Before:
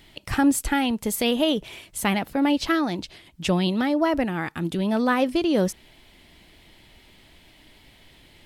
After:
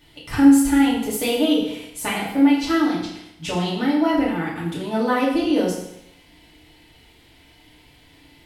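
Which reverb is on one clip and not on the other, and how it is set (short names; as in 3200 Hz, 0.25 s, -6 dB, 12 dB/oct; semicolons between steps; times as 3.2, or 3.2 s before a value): FDN reverb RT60 0.8 s, low-frequency decay 0.95×, high-frequency decay 0.95×, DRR -7.5 dB; gain -7 dB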